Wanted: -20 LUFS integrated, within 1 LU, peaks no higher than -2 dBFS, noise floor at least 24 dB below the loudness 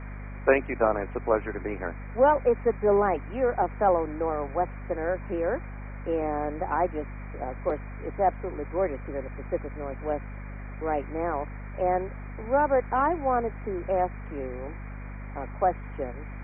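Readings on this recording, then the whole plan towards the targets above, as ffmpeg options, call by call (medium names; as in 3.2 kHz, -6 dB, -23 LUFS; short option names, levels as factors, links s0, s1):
hum 50 Hz; highest harmonic 250 Hz; hum level -36 dBFS; noise floor -38 dBFS; noise floor target -52 dBFS; loudness -28.0 LUFS; peak level -7.5 dBFS; loudness target -20.0 LUFS
-> -af "bandreject=f=50:t=h:w=6,bandreject=f=100:t=h:w=6,bandreject=f=150:t=h:w=6,bandreject=f=200:t=h:w=6,bandreject=f=250:t=h:w=6"
-af "afftdn=nr=14:nf=-38"
-af "volume=2.51,alimiter=limit=0.794:level=0:latency=1"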